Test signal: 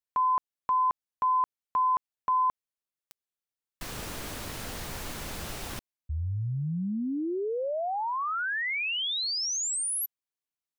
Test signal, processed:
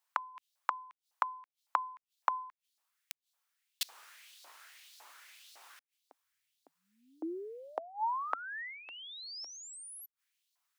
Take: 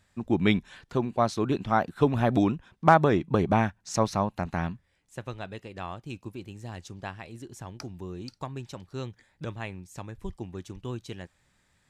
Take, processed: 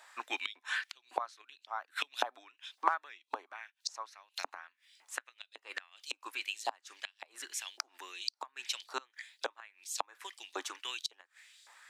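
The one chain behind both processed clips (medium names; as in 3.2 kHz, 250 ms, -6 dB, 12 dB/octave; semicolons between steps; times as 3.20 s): LFO high-pass saw up 1.8 Hz 780–4500 Hz; inverted gate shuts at -30 dBFS, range -28 dB; elliptic high-pass 270 Hz, stop band 40 dB; trim +10.5 dB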